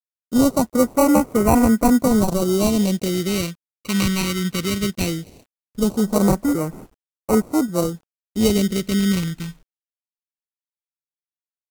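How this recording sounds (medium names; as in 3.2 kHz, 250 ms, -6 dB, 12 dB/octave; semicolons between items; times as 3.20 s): aliases and images of a low sample rate 1.7 kHz, jitter 0%; phasing stages 2, 0.18 Hz, lowest notch 640–3300 Hz; a quantiser's noise floor 10-bit, dither none; AAC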